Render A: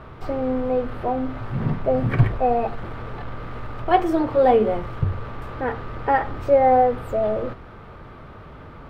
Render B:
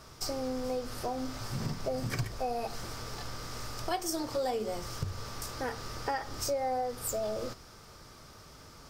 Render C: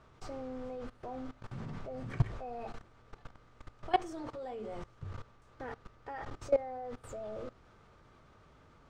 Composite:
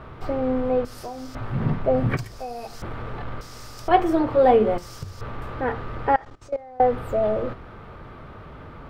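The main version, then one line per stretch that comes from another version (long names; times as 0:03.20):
A
0:00.85–0:01.35: punch in from B
0:02.17–0:02.82: punch in from B
0:03.41–0:03.88: punch in from B
0:04.78–0:05.21: punch in from B
0:06.16–0:06.80: punch in from C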